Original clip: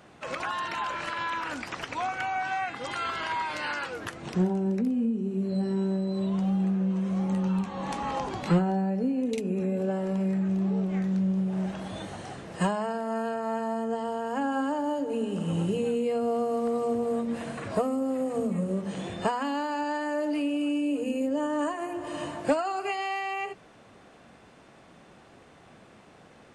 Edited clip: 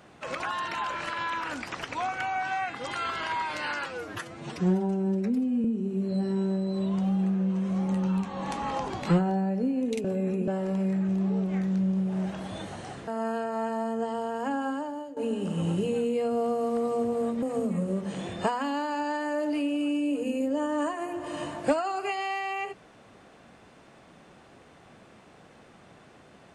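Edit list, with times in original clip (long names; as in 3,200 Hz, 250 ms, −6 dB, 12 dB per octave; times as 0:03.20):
0:03.86–0:05.05: time-stretch 1.5×
0:09.45–0:09.88: reverse
0:12.48–0:12.98: remove
0:14.10–0:15.07: fade out equal-power, to −15.5 dB
0:17.33–0:18.23: remove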